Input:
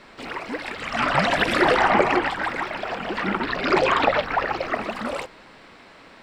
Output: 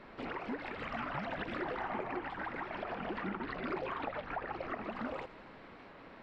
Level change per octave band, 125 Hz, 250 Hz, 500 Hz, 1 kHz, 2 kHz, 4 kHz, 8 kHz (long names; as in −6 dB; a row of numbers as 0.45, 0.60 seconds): −14.0 dB, −14.0 dB, −17.0 dB, −17.0 dB, −18.0 dB, −22.0 dB, below −30 dB